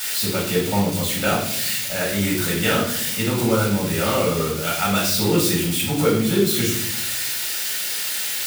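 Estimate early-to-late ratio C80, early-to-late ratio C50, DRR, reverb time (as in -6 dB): 8.0 dB, 4.0 dB, -6.0 dB, 0.70 s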